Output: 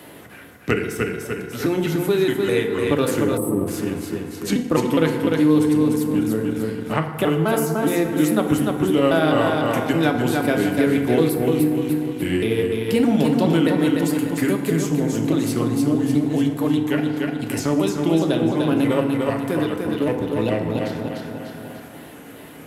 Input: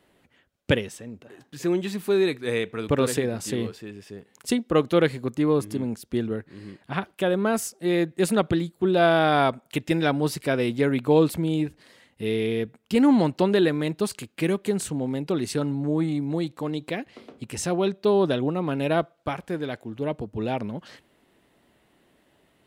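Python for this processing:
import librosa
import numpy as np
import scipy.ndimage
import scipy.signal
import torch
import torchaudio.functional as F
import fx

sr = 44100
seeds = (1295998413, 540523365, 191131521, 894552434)

p1 = fx.pitch_trill(x, sr, semitones=-3.5, every_ms=207)
p2 = scipy.signal.sosfilt(scipy.signal.butter(2, 83.0, 'highpass', fs=sr, output='sos'), p1)
p3 = fx.peak_eq(p2, sr, hz=12000.0, db=14.0, octaves=0.38)
p4 = p3 + fx.echo_feedback(p3, sr, ms=297, feedback_pct=35, wet_db=-5.5, dry=0)
p5 = fx.rev_fdn(p4, sr, rt60_s=1.3, lf_ratio=0.95, hf_ratio=0.5, size_ms=20.0, drr_db=3.5)
p6 = fx.spec_box(p5, sr, start_s=3.37, length_s=0.31, low_hz=1300.0, high_hz=7700.0, gain_db=-29)
p7 = np.sign(p6) * np.maximum(np.abs(p6) - 10.0 ** (-33.0 / 20.0), 0.0)
p8 = p6 + (p7 * 10.0 ** (-8.0 / 20.0))
p9 = fx.band_squash(p8, sr, depth_pct=70)
y = p9 * 10.0 ** (-1.5 / 20.0)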